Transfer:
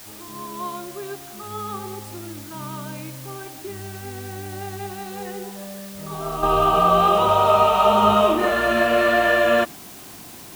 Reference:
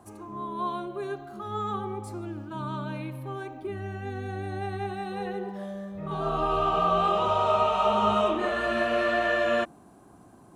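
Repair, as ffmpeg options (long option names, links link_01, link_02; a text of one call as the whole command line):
ffmpeg -i in.wav -af "afwtdn=0.0079,asetnsamples=nb_out_samples=441:pad=0,asendcmd='6.43 volume volume -7.5dB',volume=0dB" out.wav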